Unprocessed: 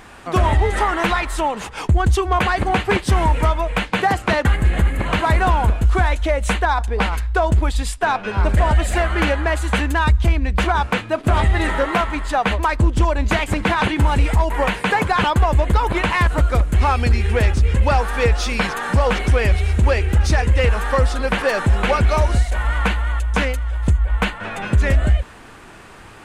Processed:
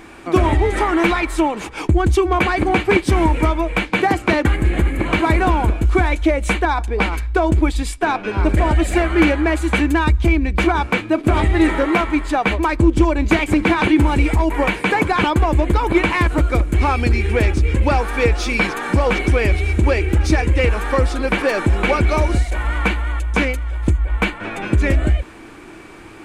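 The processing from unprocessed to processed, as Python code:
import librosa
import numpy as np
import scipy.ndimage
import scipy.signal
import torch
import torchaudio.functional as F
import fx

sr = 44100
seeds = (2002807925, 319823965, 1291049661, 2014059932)

y = fx.small_body(x, sr, hz=(320.0, 2300.0), ring_ms=40, db=13)
y = y * 10.0 ** (-1.0 / 20.0)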